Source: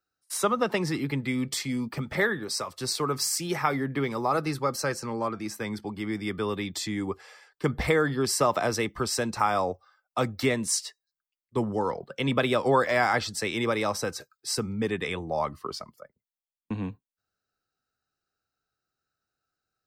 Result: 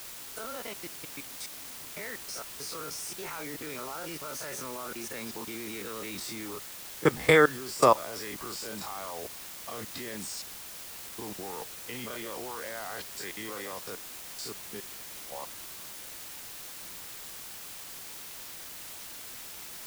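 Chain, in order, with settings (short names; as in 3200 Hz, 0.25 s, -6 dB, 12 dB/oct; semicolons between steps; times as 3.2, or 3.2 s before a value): spectral dilation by 60 ms; Doppler pass-by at 7.25, 29 m/s, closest 27 m; low shelf 160 Hz -9.5 dB; level quantiser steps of 22 dB; in parallel at -9 dB: requantised 6-bit, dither triangular; on the sum: gain +1.5 dB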